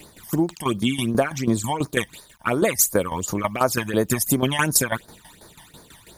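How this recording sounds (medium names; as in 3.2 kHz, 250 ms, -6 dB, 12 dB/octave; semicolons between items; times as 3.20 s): a quantiser's noise floor 10-bit, dither none; phasing stages 12, 2.8 Hz, lowest notch 410–2900 Hz; tremolo saw down 6.1 Hz, depth 75%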